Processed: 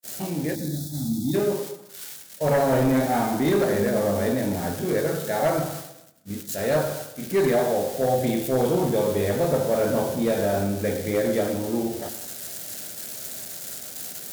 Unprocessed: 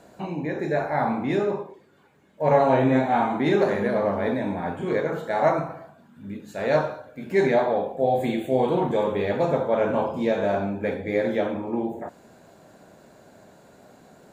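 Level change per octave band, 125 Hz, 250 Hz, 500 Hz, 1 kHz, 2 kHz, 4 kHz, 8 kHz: +3.0 dB, +1.0 dB, 0.0 dB, −3.5 dB, −2.0 dB, +5.5 dB, can't be measured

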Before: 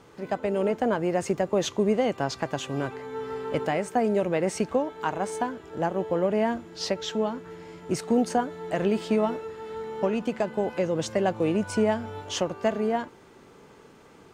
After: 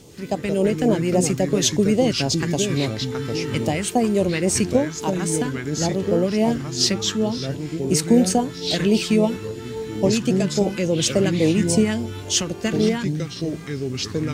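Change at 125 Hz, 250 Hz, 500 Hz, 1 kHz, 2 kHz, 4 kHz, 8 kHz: +12.0, +8.5, +4.0, −0.5, +5.0, +12.5, +15.5 decibels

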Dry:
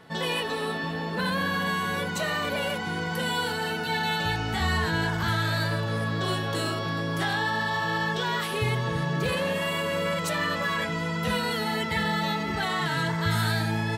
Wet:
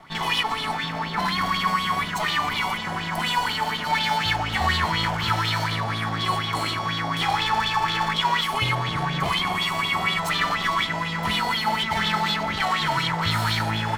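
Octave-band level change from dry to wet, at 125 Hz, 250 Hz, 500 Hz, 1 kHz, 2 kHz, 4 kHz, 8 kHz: −0.5, −1.0, −4.0, +6.5, +2.5, +6.5, +2.0 decibels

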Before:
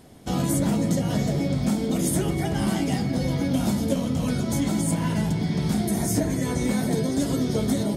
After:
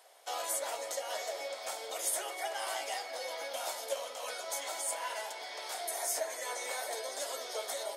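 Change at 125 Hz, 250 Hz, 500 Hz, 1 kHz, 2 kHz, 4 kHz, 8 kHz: below −40 dB, −39.5 dB, −9.0 dB, −4.0 dB, −4.0 dB, −4.0 dB, −4.0 dB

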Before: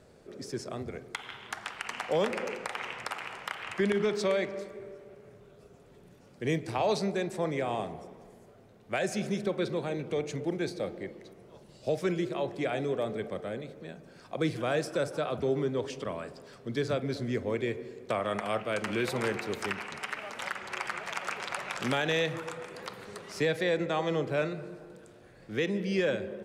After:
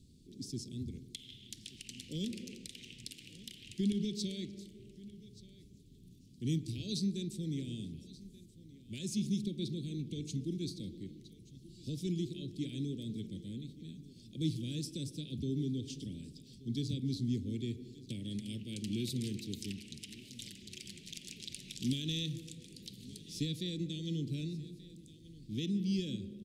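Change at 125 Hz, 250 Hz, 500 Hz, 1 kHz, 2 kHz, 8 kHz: 0.0 dB, −2.0 dB, −18.0 dB, below −40 dB, −21.0 dB, −2.0 dB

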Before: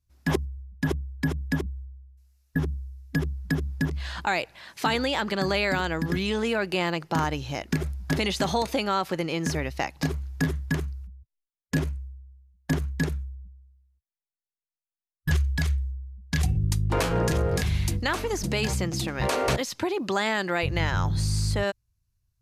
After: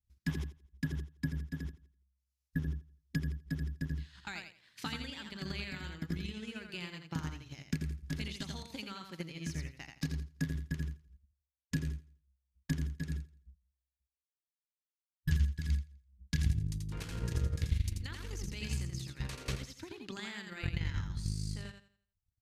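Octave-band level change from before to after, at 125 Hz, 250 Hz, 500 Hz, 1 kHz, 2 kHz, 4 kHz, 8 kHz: −8.5, −11.5, −22.5, −22.5, −15.0, −13.0, −13.0 decibels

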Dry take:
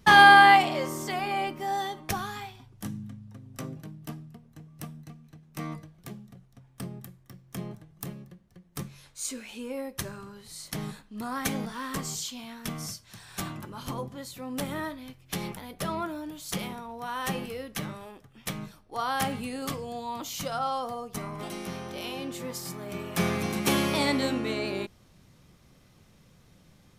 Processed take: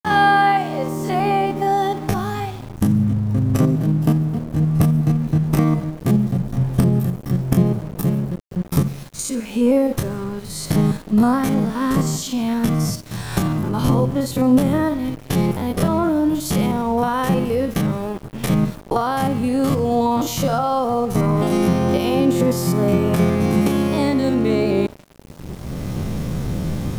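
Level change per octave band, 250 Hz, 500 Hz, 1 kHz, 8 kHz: +17.0, +14.0, +4.0, +6.5 decibels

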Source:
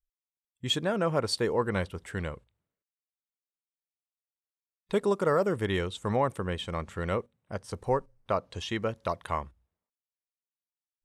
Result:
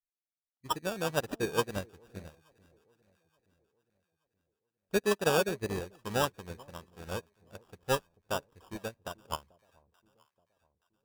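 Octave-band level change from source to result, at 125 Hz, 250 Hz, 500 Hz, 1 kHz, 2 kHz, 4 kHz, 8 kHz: −7.0, −5.5, −4.0, −4.0, −0.5, −4.5, +3.0 decibels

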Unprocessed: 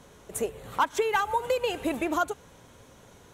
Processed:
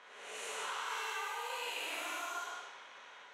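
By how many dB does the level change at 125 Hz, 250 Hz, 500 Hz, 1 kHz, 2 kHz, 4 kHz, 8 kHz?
below −30 dB, −26.5 dB, −19.0 dB, −12.0 dB, −6.5 dB, −2.5 dB, −5.0 dB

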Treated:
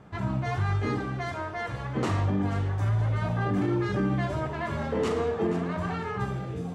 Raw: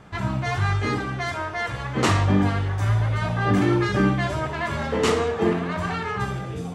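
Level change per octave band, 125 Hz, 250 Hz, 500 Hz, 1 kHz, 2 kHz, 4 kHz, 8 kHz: −4.0 dB, −5.0 dB, −4.5 dB, −6.5 dB, −8.5 dB, −11.0 dB, below −10 dB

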